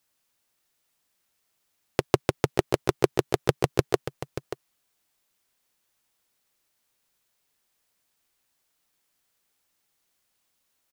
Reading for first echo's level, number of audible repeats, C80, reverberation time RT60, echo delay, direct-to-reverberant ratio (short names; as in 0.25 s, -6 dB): -11.5 dB, 1, none, none, 0.584 s, none